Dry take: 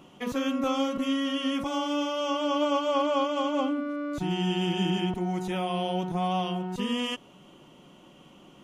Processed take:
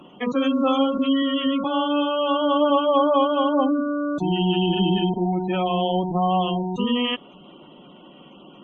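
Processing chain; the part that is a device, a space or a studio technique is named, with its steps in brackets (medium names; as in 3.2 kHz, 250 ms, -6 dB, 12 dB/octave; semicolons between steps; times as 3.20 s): 1.22–2.70 s: elliptic band-pass 130–5200 Hz, stop band 40 dB; noise-suppressed video call (high-pass 160 Hz 24 dB/octave; spectral gate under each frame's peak -20 dB strong; trim +7.5 dB; Opus 20 kbps 48 kHz)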